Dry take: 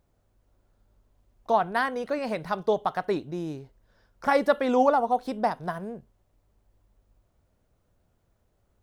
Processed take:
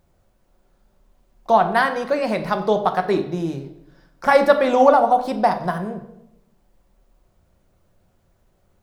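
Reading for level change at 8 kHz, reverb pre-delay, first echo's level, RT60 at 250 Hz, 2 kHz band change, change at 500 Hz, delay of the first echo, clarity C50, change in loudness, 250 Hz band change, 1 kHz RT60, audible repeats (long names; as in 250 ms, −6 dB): can't be measured, 5 ms, no echo audible, 1.1 s, +8.0 dB, +8.0 dB, no echo audible, 11.0 dB, +7.5 dB, +6.0 dB, 0.80 s, no echo audible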